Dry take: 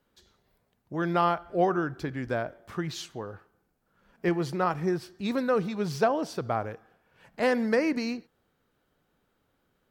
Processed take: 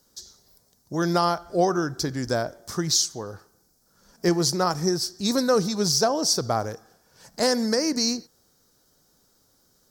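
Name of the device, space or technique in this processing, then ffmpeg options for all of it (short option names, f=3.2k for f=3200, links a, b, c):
over-bright horn tweeter: -af "highshelf=f=3.8k:t=q:w=3:g=13,alimiter=limit=-15dB:level=0:latency=1:release=464,volume=5dB"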